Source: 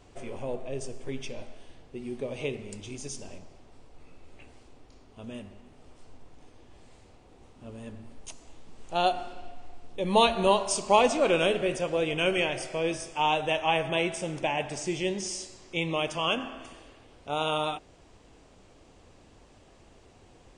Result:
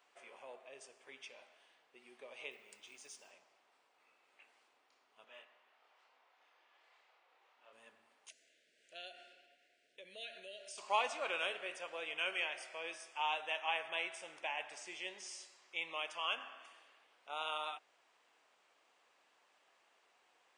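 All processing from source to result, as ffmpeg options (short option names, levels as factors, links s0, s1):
-filter_complex "[0:a]asettb=1/sr,asplit=3[s0][s1][s2];[s0]atrim=end=2.514[s3];[s1]atrim=start=2.51:end=3.31,asetpts=PTS-STARTPTS,afade=t=in:d=0.004:c=qsin,afade=t=out:st=0.796:d=0.004:c=qsin,highpass=47,acrusher=bits=8:mode=log:mix=0:aa=0.000001[s4];[s2]atrim=start=3.306[s5];[s3][s4]acrossfade=d=0.004:c1=hsin:c2=qsin[s6];[s6][s5]acrossfade=d=0.004:c1=qsin:c2=hsin,asettb=1/sr,asplit=3[s7][s8][s9];[s7]atrim=end=5.244[s10];[s8]atrim=start=5.24:end=7.73,asetpts=PTS-STARTPTS,afade=t=in:d=0.004:c=qsin,afade=t=out:st=2.486:d=0.004:c=qsin,highpass=470,lowpass=4400,aphaser=in_gain=1:out_gain=1:delay=4.4:decay=0.33:speed=1.7:type=triangular,asplit=2[s11][s12];[s12]adelay=28,volume=0.794[s13];[s11][s13]amix=inputs=2:normalize=0,atrim=end_sample=109809[s14];[s9]atrim=start=7.726[s15];[s10][s14]acrossfade=d=0.004:c1=hsin:c2=qsin[s16];[s16][s15]acrossfade=d=0.004:c1=qsin:c2=hsin,asettb=1/sr,asplit=3[s17][s18][s19];[s17]atrim=end=8.294[s20];[s18]atrim=start=8.29:end=10.78,asetpts=PTS-STARTPTS,afade=t=in:d=0.004:c=qsin,afade=t=out:st=2.486:d=0.004:c=qsin,asuperstop=centerf=1000:order=12:qfactor=1.2,acompressor=threshold=0.02:ratio=3:attack=3.2:release=140:knee=1:detection=peak[s21];[s19]atrim=start=10.776[s22];[s20][s21]acrossfade=d=0.004:c1=hsin:c2=qsin[s23];[s23][s22]acrossfade=d=0.004:c1=qsin:c2=hsin,highpass=1400,equalizer=f=7200:t=o:w=2.6:g=-13,volume=0.841"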